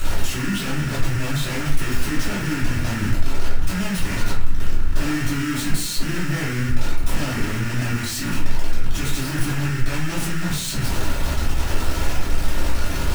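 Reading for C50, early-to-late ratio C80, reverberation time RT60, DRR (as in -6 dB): 3.5 dB, 8.0 dB, 0.45 s, -10.5 dB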